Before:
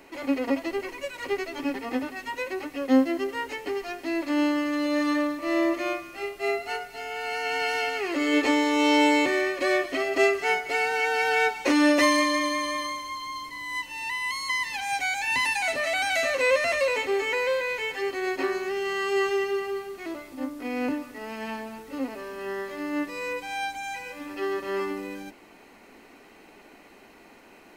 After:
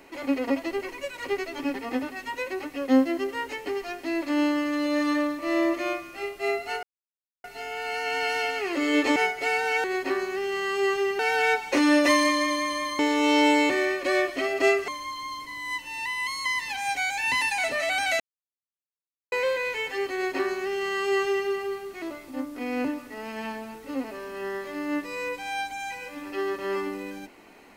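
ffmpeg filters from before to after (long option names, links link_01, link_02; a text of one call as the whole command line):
ffmpeg -i in.wav -filter_complex "[0:a]asplit=9[link_01][link_02][link_03][link_04][link_05][link_06][link_07][link_08][link_09];[link_01]atrim=end=6.83,asetpts=PTS-STARTPTS,afade=type=out:start_time=6.826:duration=0.004:curve=hsin,apad=pad_dur=0.61[link_10];[link_02]atrim=start=6.83:end=8.552,asetpts=PTS-STARTPTS,afade=type=in:duration=0.004:curve=hsin[link_11];[link_03]atrim=start=10.438:end=11.122[link_12];[link_04]atrim=start=18.168:end=19.522[link_13];[link_05]atrim=start=11.118:end=12.922[link_14];[link_06]atrim=start=8.548:end=10.442[link_15];[link_07]atrim=start=12.918:end=16.24,asetpts=PTS-STARTPTS,afade=type=out:start_time=3.318:duration=0.004:curve=hsin[link_16];[link_08]atrim=start=16.24:end=17.36,asetpts=PTS-STARTPTS,volume=0[link_17];[link_09]atrim=start=17.36,asetpts=PTS-STARTPTS,afade=type=in:duration=0.004:curve=hsin[link_18];[link_10][link_11]concat=n=2:v=0:a=1[link_19];[link_19][link_12]acrossfade=duration=0.004:curve1=hsin:curve2=hsin[link_20];[link_20][link_13]acrossfade=duration=0.004:curve1=hsin:curve2=hsin[link_21];[link_21][link_14]acrossfade=duration=0.004:curve1=hsin:curve2=hsin[link_22];[link_22][link_15]acrossfade=duration=0.004:curve1=hsin:curve2=hsin[link_23];[link_16][link_17][link_18]concat=n=3:v=0:a=1[link_24];[link_23][link_24]acrossfade=duration=0.004:curve1=hsin:curve2=hsin" out.wav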